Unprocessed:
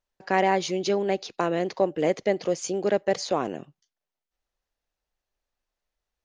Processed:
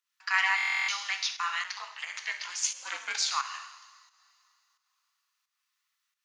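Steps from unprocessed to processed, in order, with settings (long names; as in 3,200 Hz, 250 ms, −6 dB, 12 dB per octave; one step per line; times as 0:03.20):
in parallel at −2.5 dB: brickwall limiter −19 dBFS, peak gain reduction 11 dB
on the sum: Butterworth high-pass 1,100 Hz 48 dB per octave
notch filter 1,600 Hz, Q 12
coupled-rooms reverb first 0.93 s, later 3 s, from −19 dB, DRR 5 dB
fake sidechain pumping 88 BPM, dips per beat 1, −9 dB, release 270 ms
0:01.63–0:03.30: ring modulation 90 Hz → 400 Hz
buffer that repeats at 0:00.56, samples 1,024, times 13
level +3 dB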